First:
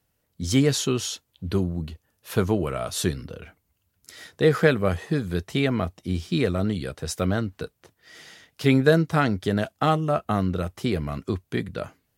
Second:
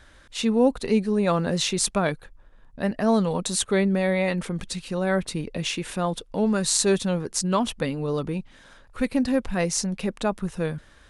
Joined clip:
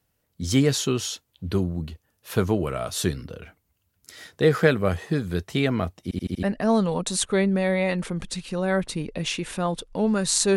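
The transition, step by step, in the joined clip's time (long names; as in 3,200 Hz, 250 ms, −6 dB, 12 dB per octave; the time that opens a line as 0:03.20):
first
0:06.03: stutter in place 0.08 s, 5 plays
0:06.43: continue with second from 0:02.82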